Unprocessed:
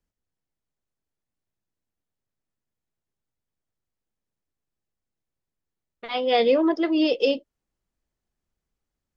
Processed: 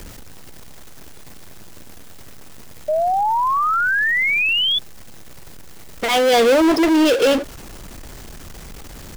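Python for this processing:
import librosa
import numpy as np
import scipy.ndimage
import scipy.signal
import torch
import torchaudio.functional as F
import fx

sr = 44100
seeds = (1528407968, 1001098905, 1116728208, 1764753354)

y = fx.power_curve(x, sr, exponent=0.35)
y = fx.spec_paint(y, sr, seeds[0], shape='rise', start_s=2.88, length_s=1.91, low_hz=600.0, high_hz=3500.0, level_db=-18.0)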